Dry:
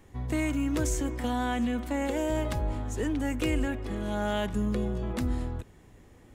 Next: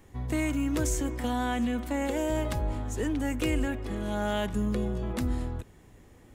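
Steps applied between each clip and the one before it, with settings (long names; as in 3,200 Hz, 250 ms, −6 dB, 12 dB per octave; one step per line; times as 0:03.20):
high-shelf EQ 9,500 Hz +4 dB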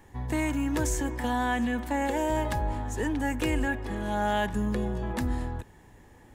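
hollow resonant body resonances 890/1,700 Hz, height 11 dB, ringing for 25 ms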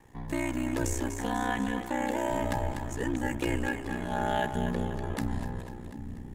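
echo with a time of its own for lows and highs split 340 Hz, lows 755 ms, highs 246 ms, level −8 dB
ring modulation 31 Hz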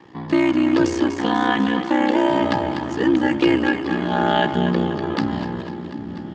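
loudspeaker in its box 150–5,100 Hz, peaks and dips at 180 Hz +5 dB, 330 Hz +9 dB, 1,200 Hz +7 dB, 3,100 Hz +6 dB, 4,700 Hz +8 dB
repeating echo 988 ms, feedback 41%, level −20 dB
level +9 dB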